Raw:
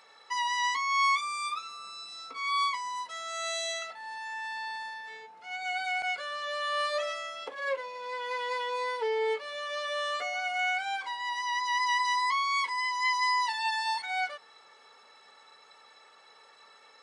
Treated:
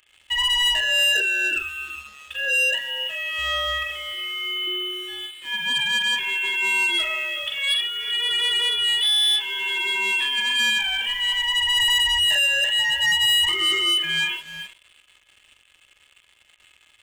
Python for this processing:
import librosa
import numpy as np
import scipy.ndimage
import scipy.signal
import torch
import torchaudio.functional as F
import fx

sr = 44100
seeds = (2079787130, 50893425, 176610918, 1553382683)

y = fx.wiener(x, sr, points=9)
y = fx.echo_multitap(y, sr, ms=(45, 47, 82, 373, 415), db=(-4.5, -16.5, -19.0, -16.0, -19.0))
y = fx.freq_invert(y, sr, carrier_hz=3900)
y = fx.ellip_highpass(y, sr, hz=200.0, order=4, stop_db=40, at=(2.45, 3.39))
y = fx.leveller(y, sr, passes=3)
y = fx.peak_eq(y, sr, hz=310.0, db=13.5, octaves=0.71, at=(4.67, 5.73))